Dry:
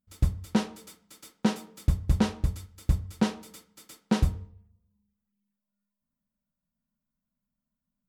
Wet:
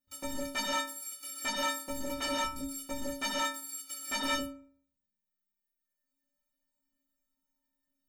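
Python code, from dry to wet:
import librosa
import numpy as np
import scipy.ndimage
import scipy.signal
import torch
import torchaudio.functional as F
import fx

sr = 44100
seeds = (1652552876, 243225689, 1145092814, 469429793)

y = fx.dereverb_blind(x, sr, rt60_s=1.6)
y = fx.rev_gated(y, sr, seeds[0], gate_ms=210, shape='rising', drr_db=-2.5)
y = fx.fold_sine(y, sr, drive_db=18, ceiling_db=-8.0)
y = fx.low_shelf(y, sr, hz=340.0, db=-8.5)
y = fx.stiff_resonator(y, sr, f0_hz=270.0, decay_s=0.62, stiffness=0.03)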